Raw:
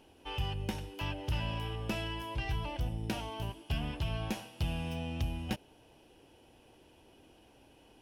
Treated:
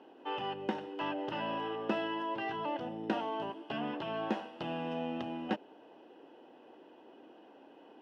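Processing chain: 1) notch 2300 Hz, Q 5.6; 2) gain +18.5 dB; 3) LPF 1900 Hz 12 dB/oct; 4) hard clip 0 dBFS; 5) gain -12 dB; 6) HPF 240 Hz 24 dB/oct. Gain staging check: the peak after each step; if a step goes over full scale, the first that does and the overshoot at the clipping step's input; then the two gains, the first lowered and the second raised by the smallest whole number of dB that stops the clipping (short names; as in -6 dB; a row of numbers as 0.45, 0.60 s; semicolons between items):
-22.0, -3.5, -5.0, -5.0, -17.0, -18.5 dBFS; no overload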